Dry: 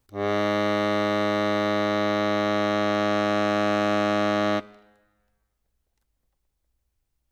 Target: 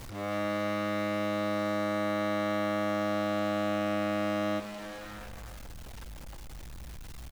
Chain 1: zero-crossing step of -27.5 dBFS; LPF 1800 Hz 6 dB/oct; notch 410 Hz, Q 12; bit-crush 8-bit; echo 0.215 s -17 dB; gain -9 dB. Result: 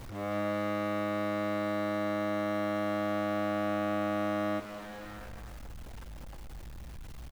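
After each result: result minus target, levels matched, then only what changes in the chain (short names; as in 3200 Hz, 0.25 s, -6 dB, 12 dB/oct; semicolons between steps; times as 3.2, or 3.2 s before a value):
echo 0.161 s early; 4000 Hz band -3.5 dB
change: echo 0.376 s -17 dB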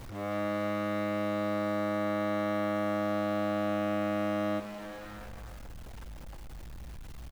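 4000 Hz band -4.5 dB
change: LPF 5100 Hz 6 dB/oct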